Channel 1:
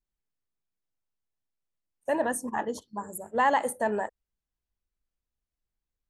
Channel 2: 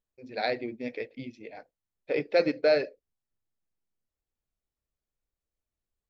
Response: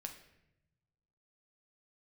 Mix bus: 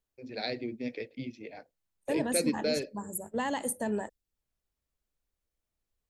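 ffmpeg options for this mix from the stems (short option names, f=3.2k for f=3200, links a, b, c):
-filter_complex "[0:a]agate=range=-9dB:threshold=-43dB:ratio=16:detection=peak,volume=3dB[a];[1:a]volume=2dB[b];[a][b]amix=inputs=2:normalize=0,acrossover=split=350|3000[c][d][e];[d]acompressor=threshold=-48dB:ratio=2[f];[c][f][e]amix=inputs=3:normalize=0"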